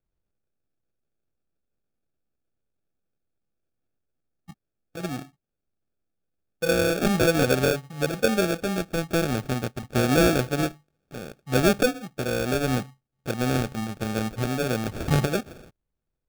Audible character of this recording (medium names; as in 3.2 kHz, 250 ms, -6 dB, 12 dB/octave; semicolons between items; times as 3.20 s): aliases and images of a low sample rate 1 kHz, jitter 0%